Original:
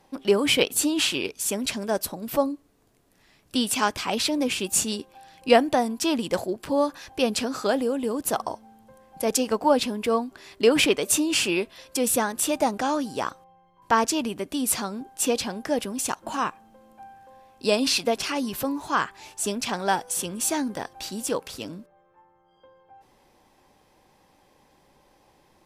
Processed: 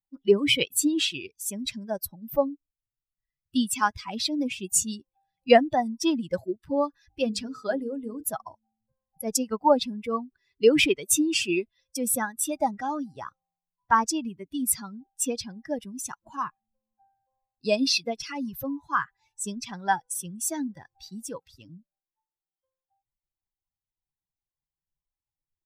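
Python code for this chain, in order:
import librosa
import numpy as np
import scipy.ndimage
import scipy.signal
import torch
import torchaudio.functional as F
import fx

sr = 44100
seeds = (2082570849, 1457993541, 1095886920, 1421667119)

y = fx.bin_expand(x, sr, power=2.0)
y = fx.hum_notches(y, sr, base_hz=50, count=9, at=(7.08, 8.22), fade=0.02)
y = y * 10.0 ** (3.0 / 20.0)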